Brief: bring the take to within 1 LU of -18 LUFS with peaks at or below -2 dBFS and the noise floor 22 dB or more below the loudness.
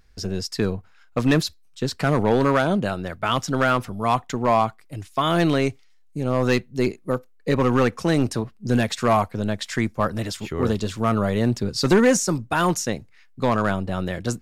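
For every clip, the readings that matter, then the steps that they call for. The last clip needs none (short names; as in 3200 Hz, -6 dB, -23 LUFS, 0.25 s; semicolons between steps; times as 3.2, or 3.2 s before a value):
clipped 0.7%; flat tops at -10.5 dBFS; loudness -22.5 LUFS; peak -10.5 dBFS; loudness target -18.0 LUFS
-> clip repair -10.5 dBFS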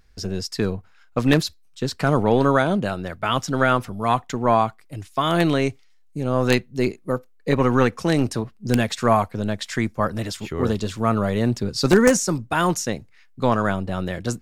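clipped 0.0%; loudness -22.0 LUFS; peak -1.5 dBFS; loudness target -18.0 LUFS
-> gain +4 dB; limiter -2 dBFS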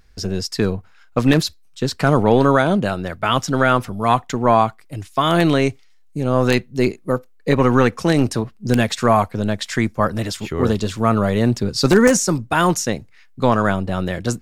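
loudness -18.5 LUFS; peak -2.0 dBFS; noise floor -48 dBFS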